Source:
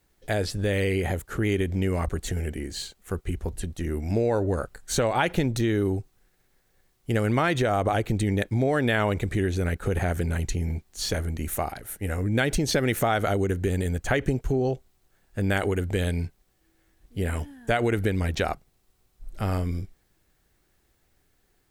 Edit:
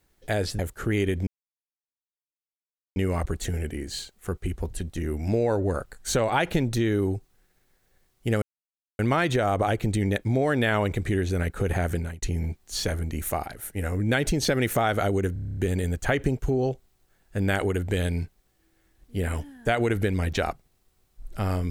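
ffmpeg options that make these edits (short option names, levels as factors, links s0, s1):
-filter_complex "[0:a]asplit=13[s0][s1][s2][s3][s4][s5][s6][s7][s8][s9][s10][s11][s12];[s0]atrim=end=0.592[s13];[s1]atrim=start=1.108:end=1.79,asetpts=PTS-STARTPTS,afade=t=out:st=0.678:d=0.004:c=hsin,apad=pad_dur=1.69[s14];[s2]atrim=start=1.79:end=7.25,asetpts=PTS-STARTPTS,afade=t=in:d=0.004:c=hsin,afade=t=out:st=5.456:d=0.004:c=hsin,apad=pad_dur=0.57[s15];[s3]atrim=start=7.25:end=10.48,asetpts=PTS-STARTPTS,afade=t=in:d=0.004:c=hsin,afade=t=out:st=2.95:d=0.28[s16];[s4]atrim=start=10.48:end=13.622,asetpts=PTS-STARTPTS,afade=t=in:d=0.004:c=hsin[s17];[s5]atrim=start=13.588:end=13.622[s18];[s6]atrim=start=13.588:end=13.622[s19];[s7]atrim=start=13.588:end=13.622[s20];[s8]atrim=start=13.588:end=13.622[s21];[s9]atrim=start=13.588:end=13.622[s22];[s10]atrim=start=13.588:end=13.622[s23];[s11]atrim=start=13.588:end=13.622[s24];[s12]atrim=start=13.588[s25];[s14][s15][s16][s17]concat=n=4:v=0:a=1[s26];[s13][s26]acrossfade=d=0.004:c1=hsin:c2=hsin[s27];[s27][s18]acrossfade=d=0.004:c1=hsin:c2=hsin[s28];[s28][s19]acrossfade=d=0.004:c1=hsin:c2=hsin[s29];[s29][s20]acrossfade=d=0.004:c1=hsin:c2=hsin[s30];[s30][s21]acrossfade=d=0.004:c1=hsin:c2=hsin[s31];[s31][s22]acrossfade=d=0.004:c1=hsin:c2=hsin[s32];[s32][s23]acrossfade=d=0.004:c1=hsin:c2=hsin[s33];[s33][s24]acrossfade=d=0.004:c1=hsin:c2=hsin[s34];[s34][s25]acrossfade=d=0.004:c1=hsin:c2=hsin"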